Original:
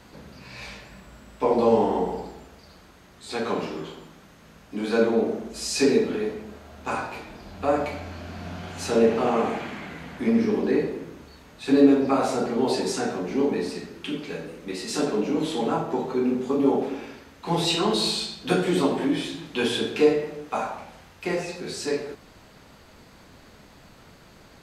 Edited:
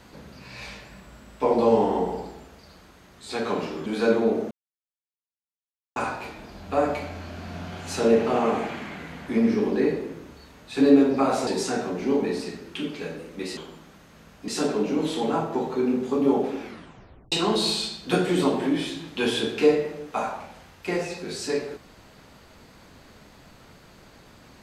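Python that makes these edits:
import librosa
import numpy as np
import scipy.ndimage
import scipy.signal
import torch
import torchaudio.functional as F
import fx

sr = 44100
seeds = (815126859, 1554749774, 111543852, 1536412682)

y = fx.edit(x, sr, fx.move(start_s=3.86, length_s=0.91, to_s=14.86),
    fx.silence(start_s=5.42, length_s=1.45),
    fx.cut(start_s=12.38, length_s=0.38),
    fx.tape_stop(start_s=17.0, length_s=0.7), tone=tone)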